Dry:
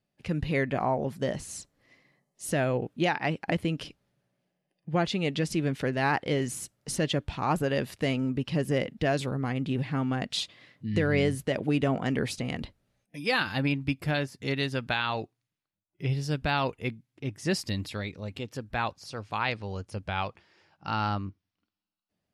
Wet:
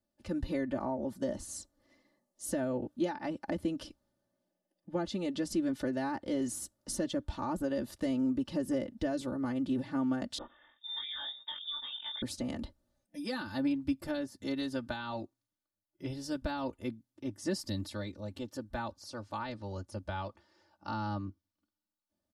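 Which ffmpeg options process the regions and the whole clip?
-filter_complex "[0:a]asettb=1/sr,asplit=3[s0][s1][s2];[s0]atrim=end=10.384[s3];[s1]atrim=start=10.38:end=12.22,asetpts=PTS-STARTPTS,afade=t=in:d=0.004:c=qsin,afade=t=out:st=1.836:d=0.004:c=qsin,tremolo=f=190:d=0.519,asplit=2[s4][s5];[s5]adelay=20,volume=0.75[s6];[s4][s6]amix=inputs=2:normalize=0,atrim=end_sample=81144,lowpass=f=3200:t=q:w=0.5098,lowpass=f=3200:t=q:w=0.6013,lowpass=f=3200:t=q:w=0.9,lowpass=f=3200:t=q:w=2.563,afreqshift=-3800[s7];[s2]atrim=start=12.216[s8];[s3][s7]acrossfade=d=0.004:c1=hsin:c2=qsin[s9];[s9][s8]acrossfade=d=0.004:c1=qsin:c2=hsin,aecho=1:1:3.4:0.95,acrossover=split=330[s10][s11];[s11]acompressor=threshold=0.0398:ratio=6[s12];[s10][s12]amix=inputs=2:normalize=0,equalizer=f=2400:t=o:w=0.81:g=-12.5,volume=0.562"

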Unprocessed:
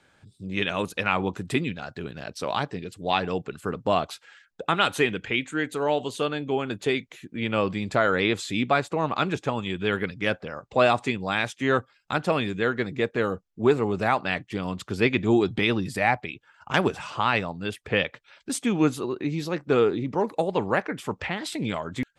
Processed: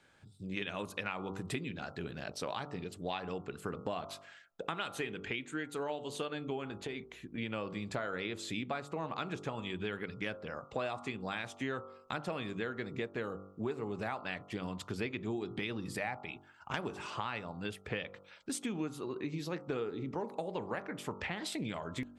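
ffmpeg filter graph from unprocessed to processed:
-filter_complex "[0:a]asettb=1/sr,asplit=3[s0][s1][s2];[s0]atrim=end=6.674[s3];[s1]atrim=start=6.67:end=7.38,asetpts=PTS-STARTPTS,afade=t=in:d=0.004:c=qsin,afade=t=out:st=0.706:d=0.004:c=qsin,highshelf=f=5400:g=-8,acompressor=threshold=0.0316:ratio=6:attack=3.2:release=140:knee=1:detection=peak,aeval=exprs='val(0)+0.000708*(sin(2*PI*60*n/s)+sin(2*PI*2*60*n/s)/2+sin(2*PI*3*60*n/s)/3+sin(2*PI*4*60*n/s)/4+sin(2*PI*5*60*n/s)/5)':c=same[s4];[s2]atrim=start=7.376[s5];[s3][s4]acrossfade=d=0.004:c1=hsin:c2=qsin[s6];[s6][s5]acrossfade=d=0.004:c1=qsin:c2=hsin,bandreject=f=48.38:t=h:w=4,bandreject=f=96.76:t=h:w=4,bandreject=f=145.14:t=h:w=4,bandreject=f=193.52:t=h:w=4,bandreject=f=241.9:t=h:w=4,bandreject=f=290.28:t=h:w=4,bandreject=f=338.66:t=h:w=4,bandreject=f=387.04:t=h:w=4,bandreject=f=435.42:t=h:w=4,bandreject=f=483.8:t=h:w=4,bandreject=f=532.18:t=h:w=4,bandreject=f=580.56:t=h:w=4,bandreject=f=628.94:t=h:w=4,bandreject=f=677.32:t=h:w=4,bandreject=f=725.7:t=h:w=4,bandreject=f=774.08:t=h:w=4,bandreject=f=822.46:t=h:w=4,bandreject=f=870.84:t=h:w=4,bandreject=f=919.22:t=h:w=4,bandreject=f=967.6:t=h:w=4,bandreject=f=1015.98:t=h:w=4,bandreject=f=1064.36:t=h:w=4,bandreject=f=1112.74:t=h:w=4,bandreject=f=1161.12:t=h:w=4,bandreject=f=1209.5:t=h:w=4,bandreject=f=1257.88:t=h:w=4,bandreject=f=1306.26:t=h:w=4,bandreject=f=1354.64:t=h:w=4,bandreject=f=1403.02:t=h:w=4,acompressor=threshold=0.0316:ratio=6,volume=0.596"

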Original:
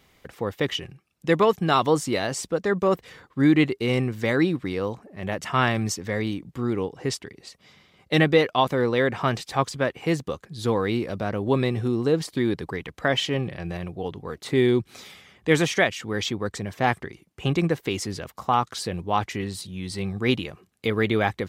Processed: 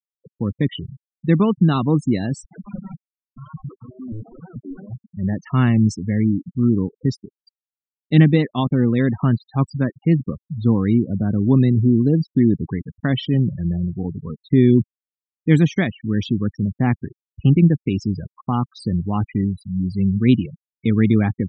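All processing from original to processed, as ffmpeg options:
-filter_complex "[0:a]asettb=1/sr,asplit=3[s0][s1][s2];[s0]atrim=end=2.434[s3];[s1]atrim=start=2.43:end=5.04,asetpts=PTS-STARTPTS,afade=t=in:d=0.004:c=qsin,afade=t=out:st=2.606:d=0.004:c=qsin,equalizer=f=73:t=o:w=2.1:g=4,acompressor=threshold=0.0501:ratio=16:attack=3.2:release=140:knee=1:detection=peak,aeval=exprs='(mod(31.6*val(0)+1,2)-1)/31.6':c=same[s4];[s2]atrim=start=5.036[s5];[s3][s4]acrossfade=d=0.004:c1=hsin:c2=qsin[s6];[s6][s5]acrossfade=d=0.004:c1=qsin:c2=hsin,afftfilt=real='re*gte(hypot(re,im),0.0631)':imag='im*gte(hypot(re,im),0.0631)':win_size=1024:overlap=0.75,lowshelf=f=350:t=q:w=1.5:g=13,volume=0.668"

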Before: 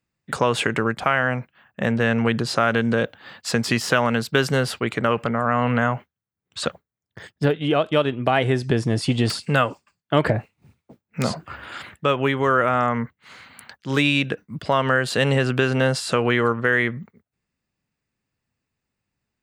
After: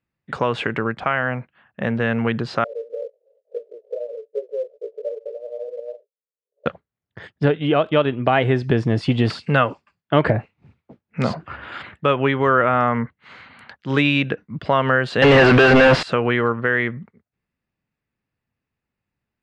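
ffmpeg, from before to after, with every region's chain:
-filter_complex "[0:a]asettb=1/sr,asplit=3[s0][s1][s2];[s0]atrim=end=2.644[s3];[s1]atrim=start=2.64:end=6.66,asetpts=PTS-STARTPTS,afade=t=in:d=0.004:c=qsin,afade=t=out:st=4.016:d=0.004:c=qsin,flanger=delay=16:depth=3.2:speed=2.8,asuperpass=centerf=500:order=8:qfactor=2.7,acrusher=bits=7:mode=log:mix=0:aa=0.000001[s4];[s2]atrim=start=6.656[s5];[s3][s4]acrossfade=d=0.004:c1=hsin:c2=qsin[s6];[s6][s5]acrossfade=d=0.004:c1=qsin:c2=hsin,asettb=1/sr,asplit=3[s7][s8][s9];[s7]atrim=end=15.224[s10];[s8]atrim=start=15.22:end=16.03,asetpts=PTS-STARTPTS,afade=t=in:d=0.004:c=qsin,afade=t=out:st=0.806:d=0.004:c=qsin,acrusher=bits=6:mode=log:mix=0:aa=0.000001,asplit=2[s11][s12];[s12]highpass=f=720:p=1,volume=79.4,asoftclip=type=tanh:threshold=0.562[s13];[s11][s13]amix=inputs=2:normalize=0,lowpass=f=2100:p=1,volume=0.501[s14];[s9]atrim=start=16.026[s15];[s10][s14]acrossfade=d=0.004:c1=hsin:c2=qsin[s16];[s16][s15]acrossfade=d=0.004:c1=qsin:c2=hsin,lowpass=3200,dynaudnorm=f=250:g=31:m=3.76,volume=0.891"

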